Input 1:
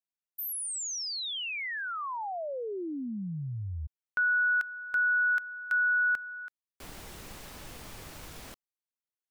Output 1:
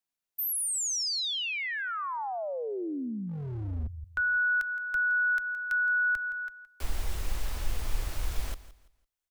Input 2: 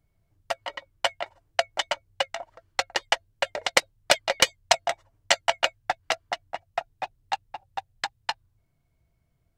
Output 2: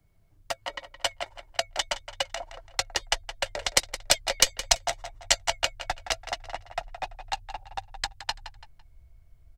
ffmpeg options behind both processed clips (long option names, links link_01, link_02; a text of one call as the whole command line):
ffmpeg -i in.wav -filter_complex "[0:a]aecho=1:1:168|336|504:0.15|0.0419|0.0117,acrossover=split=180|4400[link_01][link_02][link_03];[link_01]aeval=exprs='0.0133*(abs(mod(val(0)/0.0133+3,4)-2)-1)':channel_layout=same[link_04];[link_04][link_02][link_03]amix=inputs=3:normalize=0,asubboost=boost=10.5:cutoff=54,acrossover=split=260|4100[link_05][link_06][link_07];[link_06]acompressor=threshold=-40dB:ratio=1.5:attack=0.19:release=202:knee=2.83:detection=peak[link_08];[link_05][link_08][link_07]amix=inputs=3:normalize=0,volume=4.5dB" out.wav